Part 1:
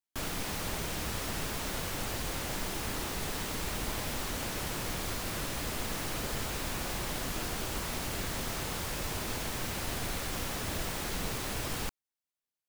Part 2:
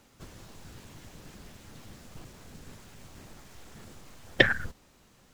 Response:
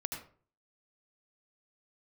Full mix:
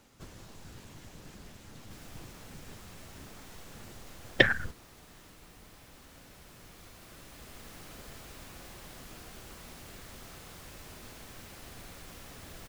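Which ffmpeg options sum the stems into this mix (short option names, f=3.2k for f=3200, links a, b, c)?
-filter_complex "[0:a]bandreject=f=910:w=19,adelay=1750,volume=-17dB,asplit=2[a][b];[b]volume=-4dB[c];[1:a]volume=-1dB,asplit=2[d][e];[e]apad=whole_len=636551[f];[a][f]sidechaincompress=threshold=-55dB:ratio=8:attack=44:release=1380[g];[2:a]atrim=start_sample=2205[h];[c][h]afir=irnorm=-1:irlink=0[i];[g][d][i]amix=inputs=3:normalize=0"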